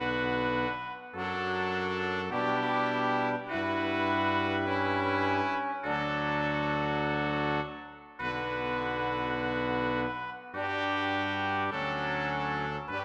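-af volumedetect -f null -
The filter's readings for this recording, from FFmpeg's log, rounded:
mean_volume: -30.9 dB
max_volume: -16.3 dB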